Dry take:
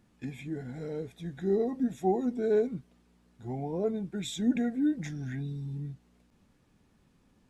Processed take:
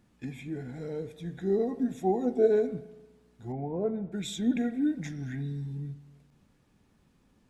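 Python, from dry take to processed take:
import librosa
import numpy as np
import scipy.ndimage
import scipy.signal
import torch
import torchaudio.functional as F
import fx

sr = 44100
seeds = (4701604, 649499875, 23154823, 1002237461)

y = fx.spec_box(x, sr, start_s=2.23, length_s=0.24, low_hz=330.0, high_hz=780.0, gain_db=11)
y = fx.lowpass(y, sr, hz=1800.0, slope=12, at=(3.52, 4.12))
y = fx.rev_spring(y, sr, rt60_s=1.2, pass_ms=(35, 58), chirp_ms=30, drr_db=13.5)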